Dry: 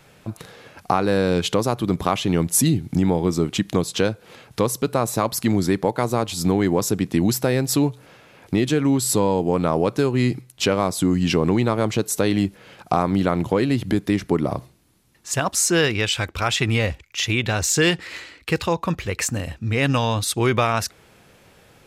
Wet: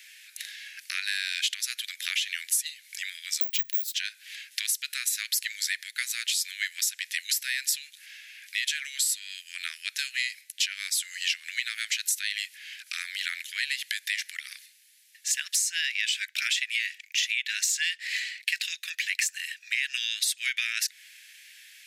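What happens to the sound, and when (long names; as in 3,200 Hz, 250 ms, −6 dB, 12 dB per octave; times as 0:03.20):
0:03.41–0:03.94: bad sample-rate conversion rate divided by 2×, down none, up zero stuff
whole clip: Butterworth high-pass 1,700 Hz 72 dB per octave; downward compressor 10 to 1, threshold −31 dBFS; level +7 dB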